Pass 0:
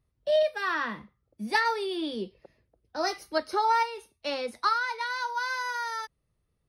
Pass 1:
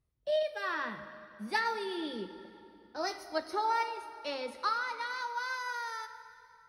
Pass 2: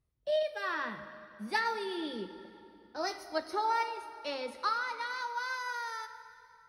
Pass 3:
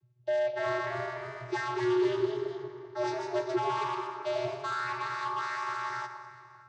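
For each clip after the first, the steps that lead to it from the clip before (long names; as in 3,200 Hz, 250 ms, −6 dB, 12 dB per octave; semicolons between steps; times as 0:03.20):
dense smooth reverb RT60 2.9 s, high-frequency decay 0.75×, DRR 10 dB; level −6 dB
no processing that can be heard
hard clipping −36 dBFS, distortion −6 dB; channel vocoder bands 16, square 122 Hz; delay with pitch and tempo change per echo 327 ms, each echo +1 semitone, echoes 2, each echo −6 dB; level +8 dB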